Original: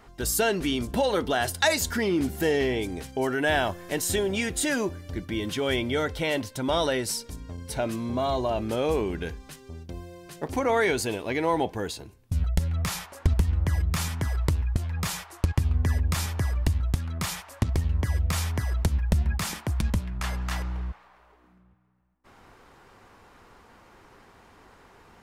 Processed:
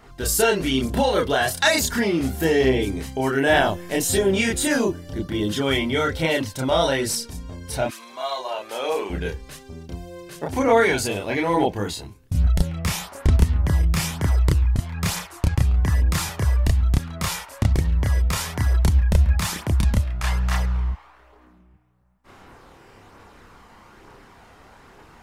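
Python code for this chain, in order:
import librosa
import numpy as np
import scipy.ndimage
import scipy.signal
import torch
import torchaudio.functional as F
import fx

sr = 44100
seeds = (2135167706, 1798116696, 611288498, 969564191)

y = fx.peak_eq(x, sr, hz=2300.0, db=-9.5, octaves=0.27, at=(4.82, 5.61))
y = fx.highpass(y, sr, hz=fx.line((7.86, 1400.0), (9.09, 500.0)), slope=12, at=(7.86, 9.09), fade=0.02)
y = fx.chorus_voices(y, sr, voices=2, hz=0.56, base_ms=30, depth_ms=1.1, mix_pct=50)
y = y * 10.0 ** (8.0 / 20.0)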